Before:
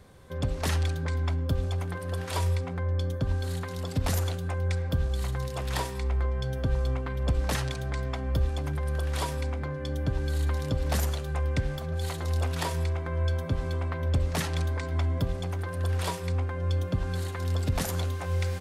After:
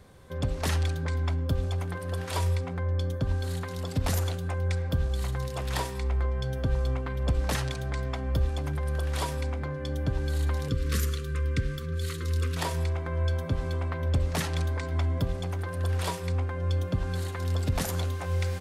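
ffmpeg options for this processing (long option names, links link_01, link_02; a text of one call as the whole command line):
ffmpeg -i in.wav -filter_complex "[0:a]asettb=1/sr,asplit=3[link_01][link_02][link_03];[link_01]atrim=end=10.684[link_04];[link_02]atrim=start=10.68:end=12.57,asetpts=PTS-STARTPTS,afade=type=in:duration=0.004:curve=qsin,afade=type=out:start_time=1.886:duration=0.004:curve=qsin,asuperstop=centerf=750:order=12:qfactor=1.3[link_05];[link_03]atrim=start=12.566[link_06];[link_04][link_05]acrossfade=duration=0.004:curve1=hsin:curve2=qsin[link_07];[link_07][link_06]acrossfade=duration=0.004:curve1=qsin:curve2=hsin" out.wav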